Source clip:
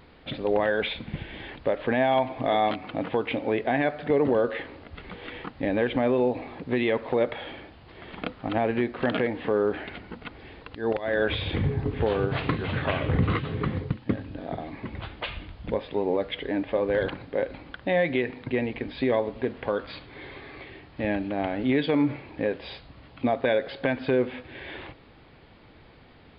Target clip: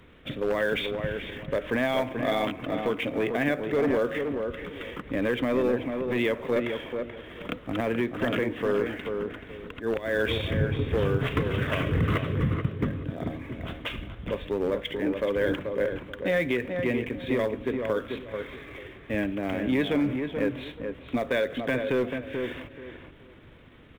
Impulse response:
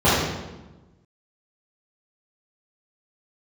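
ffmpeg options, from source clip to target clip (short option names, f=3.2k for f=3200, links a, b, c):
-filter_complex "[0:a]aresample=8000,aresample=44100,acrossover=split=110|860[a][b][c];[b]asoftclip=type=hard:threshold=-21dB[d];[c]acrusher=bits=5:mode=log:mix=0:aa=0.000001[e];[a][d][e]amix=inputs=3:normalize=0,aemphasis=mode=reproduction:type=50kf,asplit=2[f][g];[g]adelay=475,lowpass=f=1.6k:p=1,volume=-5dB,asplit=2[h][i];[i]adelay=475,lowpass=f=1.6k:p=1,volume=0.25,asplit=2[j][k];[k]adelay=475,lowpass=f=1.6k:p=1,volume=0.25[l];[h][j][l]amix=inputs=3:normalize=0[m];[f][m]amix=inputs=2:normalize=0,crystalizer=i=2:c=0,atempo=1.1,equalizer=f=800:w=3.4:g=-10"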